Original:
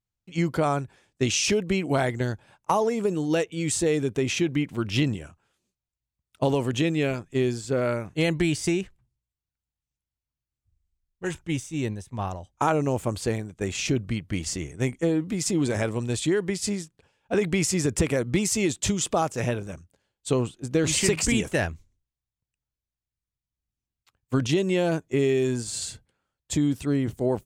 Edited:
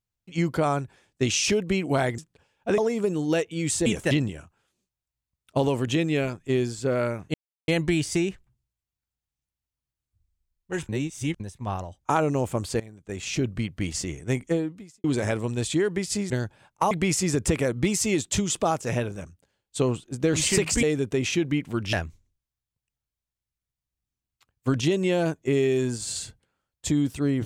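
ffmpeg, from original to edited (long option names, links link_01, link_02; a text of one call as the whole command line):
ffmpeg -i in.wav -filter_complex "[0:a]asplit=14[link_01][link_02][link_03][link_04][link_05][link_06][link_07][link_08][link_09][link_10][link_11][link_12][link_13][link_14];[link_01]atrim=end=2.182[link_15];[link_02]atrim=start=16.818:end=17.422[link_16];[link_03]atrim=start=2.788:end=3.872[link_17];[link_04]atrim=start=21.338:end=21.592[link_18];[link_05]atrim=start=4.968:end=8.2,asetpts=PTS-STARTPTS,afade=type=out:start_time=3.228:duration=0.004:curve=hsin,apad=pad_dur=0.34[link_19];[link_06]atrim=start=8.2:end=11.412,asetpts=PTS-STARTPTS,afade=type=in:duration=0.004:curve=hsin[link_20];[link_07]atrim=start=11.408:end=11.922,asetpts=PTS-STARTPTS,areverse[link_21];[link_08]atrim=start=11.918:end=13.32,asetpts=PTS-STARTPTS,afade=type=out:start_time=1.398:duration=0.004:curve=hsin:silence=0.133352[link_22];[link_09]atrim=start=13.32:end=15.56,asetpts=PTS-STARTPTS,afade=type=in:duration=0.71:silence=0.133352,afade=type=out:start_time=1.72:duration=0.52:curve=qua[link_23];[link_10]atrim=start=15.56:end=16.822,asetpts=PTS-STARTPTS,afade=type=in:duration=0.004:curve=hsin[link_24];[link_11]atrim=start=2.178:end=2.792[link_25];[link_12]atrim=start=17.418:end=21.342[link_26];[link_13]atrim=start=3.868:end=4.972[link_27];[link_14]atrim=start=21.588[link_28];[link_15][link_16]acrossfade=duration=0.004:curve1=hsin:curve2=hsin[link_29];[link_29][link_17]acrossfade=duration=0.004:curve1=hsin:curve2=hsin[link_30];[link_30][link_18]acrossfade=duration=0.004:curve1=hsin:curve2=hsin[link_31];[link_19][link_20]concat=n=2:v=0:a=1[link_32];[link_31][link_32]acrossfade=duration=0.004:curve1=hsin:curve2=hsin[link_33];[link_33][link_21]acrossfade=duration=0.004:curve1=hsin:curve2=hsin[link_34];[link_22][link_23][link_24]concat=n=3:v=0:a=1[link_35];[link_34][link_35]acrossfade=duration=0.004:curve1=hsin:curve2=hsin[link_36];[link_36][link_25]acrossfade=duration=0.004:curve1=hsin:curve2=hsin[link_37];[link_37][link_26]acrossfade=duration=0.004:curve1=hsin:curve2=hsin[link_38];[link_38][link_27]acrossfade=duration=0.004:curve1=hsin:curve2=hsin[link_39];[link_39][link_28]acrossfade=duration=0.004:curve1=hsin:curve2=hsin" out.wav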